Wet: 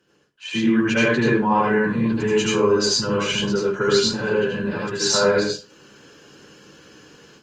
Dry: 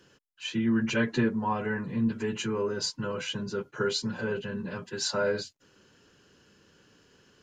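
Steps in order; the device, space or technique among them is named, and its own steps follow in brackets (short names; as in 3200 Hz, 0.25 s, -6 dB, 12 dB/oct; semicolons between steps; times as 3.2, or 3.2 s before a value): far-field microphone of a smart speaker (reverb RT60 0.35 s, pre-delay 74 ms, DRR -3.5 dB; HPF 140 Hz 6 dB/oct; AGC gain up to 13 dB; gain -4 dB; Opus 32 kbps 48000 Hz)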